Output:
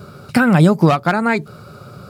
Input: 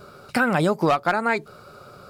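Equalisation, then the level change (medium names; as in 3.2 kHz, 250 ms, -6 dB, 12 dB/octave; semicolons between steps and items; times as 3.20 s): high-pass 94 Hz; tone controls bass +14 dB, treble -3 dB; treble shelf 4 kHz +6 dB; +3.0 dB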